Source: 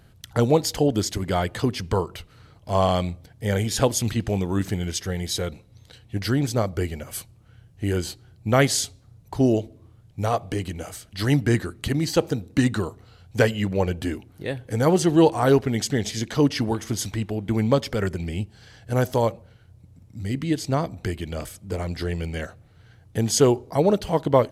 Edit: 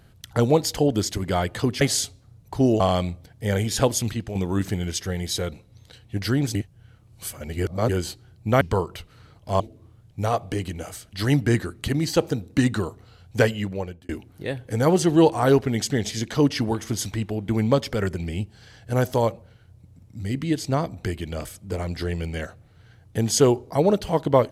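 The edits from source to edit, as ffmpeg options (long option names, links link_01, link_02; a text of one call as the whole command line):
ffmpeg -i in.wav -filter_complex "[0:a]asplit=9[link_01][link_02][link_03][link_04][link_05][link_06][link_07][link_08][link_09];[link_01]atrim=end=1.812[link_10];[link_02]atrim=start=8.608:end=9.602[link_11];[link_03]atrim=start=2.798:end=4.35,asetpts=PTS-STARTPTS,afade=type=out:start_time=1.162:duration=0.39:silence=0.354813[link_12];[link_04]atrim=start=4.35:end=6.552,asetpts=PTS-STARTPTS,afade=type=in:duration=0.004:curve=hsin:silence=0.354813[link_13];[link_05]atrim=start=6.548:end=7.892,asetpts=PTS-STARTPTS,areverse[link_14];[link_06]atrim=start=7.888:end=8.612[link_15];[link_07]atrim=start=1.808:end=2.802[link_16];[link_08]atrim=start=9.598:end=14.09,asetpts=PTS-STARTPTS,afade=type=out:start_time=3.842:duration=0.65[link_17];[link_09]atrim=start=14.09,asetpts=PTS-STARTPTS,afade=type=in:duration=0.004:curve=hsin[link_18];[link_10][link_11]acrossfade=duration=0.004:curve1=hsin:curve2=hsin[link_19];[link_12][link_13]concat=n=2:v=0:a=1[link_20];[link_19][link_20]acrossfade=duration=0.004:curve1=hsin:curve2=hsin[link_21];[link_21][link_14]acrossfade=duration=0.004:curve1=hsin:curve2=hsin[link_22];[link_22][link_15]acrossfade=duration=0.004:curve1=hsin:curve2=hsin[link_23];[link_23][link_16]acrossfade=duration=0.004:curve1=hsin:curve2=hsin[link_24];[link_17][link_18]concat=n=2:v=0:a=1[link_25];[link_24][link_25]acrossfade=duration=0.004:curve1=hsin:curve2=hsin" out.wav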